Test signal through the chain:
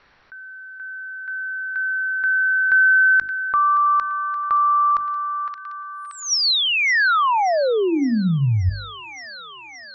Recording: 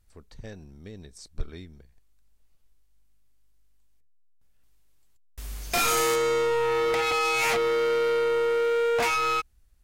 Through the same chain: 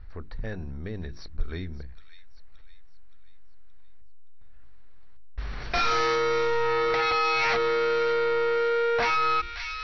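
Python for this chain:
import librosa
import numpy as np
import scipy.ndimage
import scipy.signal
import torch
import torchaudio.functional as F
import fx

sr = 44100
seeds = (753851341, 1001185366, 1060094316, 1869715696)

p1 = fx.hum_notches(x, sr, base_hz=50, count=7)
p2 = fx.env_lowpass(p1, sr, base_hz=2300.0, full_db=-17.0)
p3 = fx.low_shelf(p2, sr, hz=74.0, db=11.5)
p4 = fx.rider(p3, sr, range_db=4, speed_s=2.0)
p5 = scipy.signal.sosfilt(scipy.signal.cheby1(6, 6, 5800.0, 'lowpass', fs=sr, output='sos'), p4)
p6 = p5 + fx.echo_wet_highpass(p5, sr, ms=572, feedback_pct=47, hz=2300.0, wet_db=-14, dry=0)
y = fx.env_flatten(p6, sr, amount_pct=50)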